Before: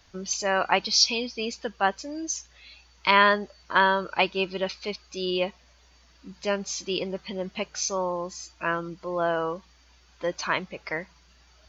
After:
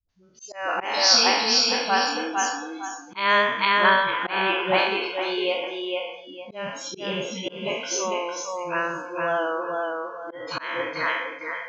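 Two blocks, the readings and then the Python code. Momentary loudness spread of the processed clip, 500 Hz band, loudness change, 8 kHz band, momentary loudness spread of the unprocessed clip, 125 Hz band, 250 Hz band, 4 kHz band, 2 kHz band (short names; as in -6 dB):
15 LU, +2.0 dB, +3.5 dB, n/a, 13 LU, -3.0 dB, +0.5 dB, +5.5 dB, +4.0 dB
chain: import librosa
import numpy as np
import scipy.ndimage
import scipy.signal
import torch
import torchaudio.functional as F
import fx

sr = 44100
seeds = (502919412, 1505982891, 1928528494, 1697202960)

y = fx.spec_trails(x, sr, decay_s=1.07)
y = fx.echo_feedback(y, sr, ms=455, feedback_pct=36, wet_db=-3)
y = fx.noise_reduce_blind(y, sr, reduce_db=22)
y = fx.dispersion(y, sr, late='highs', ms=90.0, hz=320.0)
y = fx.auto_swell(y, sr, attack_ms=222.0)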